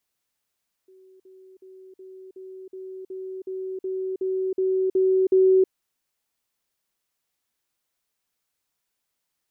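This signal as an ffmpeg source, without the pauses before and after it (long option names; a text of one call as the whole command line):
ffmpeg -f lavfi -i "aevalsrc='pow(10,(-49.5+3*floor(t/0.37))/20)*sin(2*PI*377*t)*clip(min(mod(t,0.37),0.32-mod(t,0.37))/0.005,0,1)':duration=4.81:sample_rate=44100" out.wav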